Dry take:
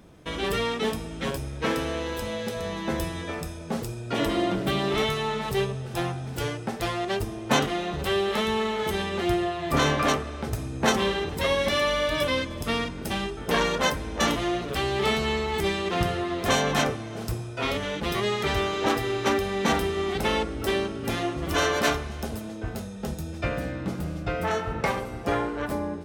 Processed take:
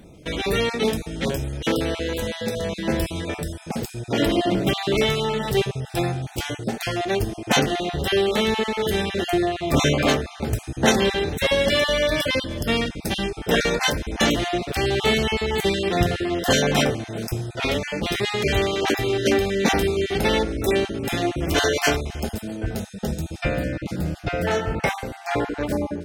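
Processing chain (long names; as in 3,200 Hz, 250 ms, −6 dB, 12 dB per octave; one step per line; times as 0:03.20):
time-frequency cells dropped at random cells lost 21%
parametric band 1,100 Hz −10 dB 0.51 octaves
level +6 dB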